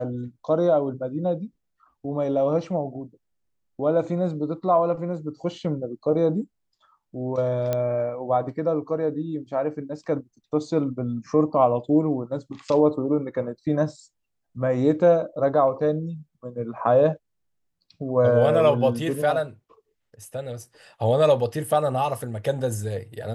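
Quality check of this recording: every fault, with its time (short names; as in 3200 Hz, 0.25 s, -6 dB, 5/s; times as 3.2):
7.73 pop -12 dBFS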